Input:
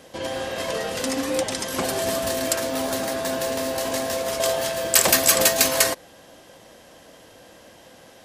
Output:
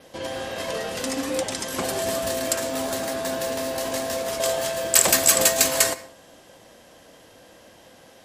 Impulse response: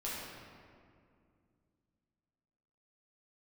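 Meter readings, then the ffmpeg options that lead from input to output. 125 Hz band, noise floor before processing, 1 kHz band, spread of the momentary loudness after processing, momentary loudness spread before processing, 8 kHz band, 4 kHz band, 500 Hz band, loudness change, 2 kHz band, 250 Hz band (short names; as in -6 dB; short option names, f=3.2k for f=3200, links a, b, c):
-2.0 dB, -49 dBFS, -1.5 dB, 13 LU, 11 LU, +1.0 dB, -1.5 dB, -1.5 dB, -0.5 dB, -2.0 dB, -2.0 dB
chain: -filter_complex "[0:a]adynamicequalizer=threshold=0.0158:dfrequency=7600:dqfactor=4.1:tfrequency=7600:tqfactor=4.1:attack=5:release=100:ratio=0.375:range=3:mode=boostabove:tftype=bell,asplit=2[a][b];[1:a]atrim=start_sample=2205,afade=t=out:st=0.23:d=0.01,atrim=end_sample=10584,adelay=21[c];[b][c]afir=irnorm=-1:irlink=0,volume=-16dB[d];[a][d]amix=inputs=2:normalize=0,volume=-2dB"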